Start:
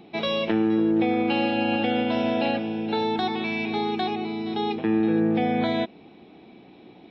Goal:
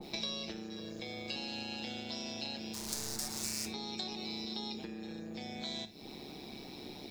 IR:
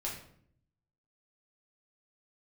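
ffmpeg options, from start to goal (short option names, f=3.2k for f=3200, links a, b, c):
-filter_complex "[0:a]asettb=1/sr,asplit=3[a][b][c];[a]atrim=end=0.764[d];[b]atrim=start=0.76:end=1.36,asetpts=PTS-STARTPTS,afade=t=in:d=0.004:c=qsin,afade=t=out:st=0.596:d=0.004:c=qsin,aecho=1:1:1.8:0.72,atrim=end_sample=26460[e];[c]atrim=start=1.356[f];[d][e]acrossfade=d=0.004:c1=hsin:c2=qsin[g];[g][f]acrossfade=d=0.004:c1=qsin:c2=hsin,asettb=1/sr,asplit=3[h][i][j];[h]atrim=end=4.434[k];[i]atrim=start=4.43:end=4.94,asetpts=PTS-STARTPTS,afade=t=in:d=0.004:c=qsin,afade=t=out:st=0.506:d=0.004:c=qsin,lowshelf=f=150:t=q:w=3:g=-9[l];[j]atrim=start=4.936[m];[k][l]acrossfade=d=0.004:c1=hsin:c2=qsin[n];[n][m]acrossfade=d=0.004:c1=qsin:c2=hsin,tremolo=f=140:d=0.71,acompressor=threshold=-36dB:ratio=6,asplit=3[o][p][q];[o]afade=t=out:st=2.73:d=0.02[r];[p]aeval=exprs='0.0106*(abs(mod(val(0)/0.0106+3,4)-2)-1)':c=same,afade=t=in:st=2.73:d=0.02,afade=t=out:st=3.65:d=0.02[s];[q]afade=t=in:st=3.65:d=0.02[t];[r][s][t]amix=inputs=3:normalize=0,aexciter=amount=12.5:drive=4.8:freq=4.6k,acrossover=split=420|2800[u][v][w];[u]acompressor=threshold=-48dB:ratio=4[x];[v]acompressor=threshold=-55dB:ratio=4[y];[w]acompressor=threshold=-47dB:ratio=4[z];[x][y][z]amix=inputs=3:normalize=0,asplit=2[aa][ab];[1:a]atrim=start_sample=2205,atrim=end_sample=4410[ac];[ab][ac]afir=irnorm=-1:irlink=0,volume=-6.5dB[ad];[aa][ad]amix=inputs=2:normalize=0,adynamicequalizer=threshold=0.001:dfrequency=1900:dqfactor=0.7:tfrequency=1900:tqfactor=0.7:attack=5:release=100:ratio=0.375:range=2.5:mode=boostabove:tftype=highshelf,volume=1dB"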